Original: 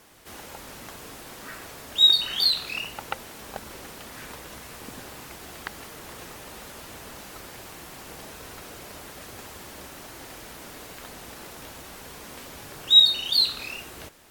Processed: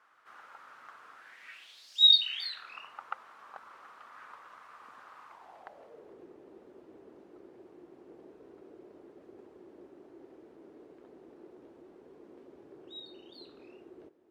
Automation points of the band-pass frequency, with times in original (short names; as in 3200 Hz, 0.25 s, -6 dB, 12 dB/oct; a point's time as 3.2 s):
band-pass, Q 4.1
1.14 s 1300 Hz
1.96 s 5200 Hz
2.73 s 1200 Hz
5.22 s 1200 Hz
6.2 s 360 Hz